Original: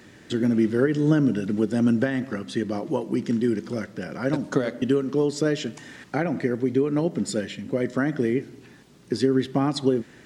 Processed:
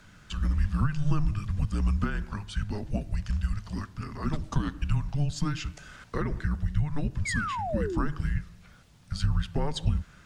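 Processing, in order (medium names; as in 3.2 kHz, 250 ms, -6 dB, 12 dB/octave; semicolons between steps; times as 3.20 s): frequency shift -300 Hz; painted sound fall, 7.25–8.07 s, 240–2300 Hz -28 dBFS; trim -4 dB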